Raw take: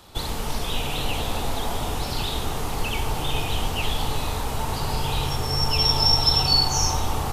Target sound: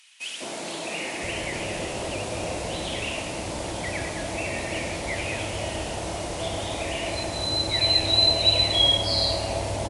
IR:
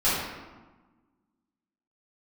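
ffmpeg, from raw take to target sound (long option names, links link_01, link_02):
-filter_complex "[0:a]highpass=120,acrossover=split=250|2200[link_01][link_02][link_03];[link_02]adelay=150[link_04];[link_01]adelay=750[link_05];[link_05][link_04][link_03]amix=inputs=3:normalize=0,asetrate=32667,aresample=44100"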